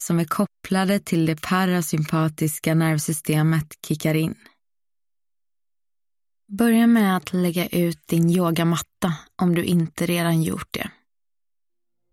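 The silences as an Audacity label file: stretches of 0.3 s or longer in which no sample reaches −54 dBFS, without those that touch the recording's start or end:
4.530000	6.490000	silence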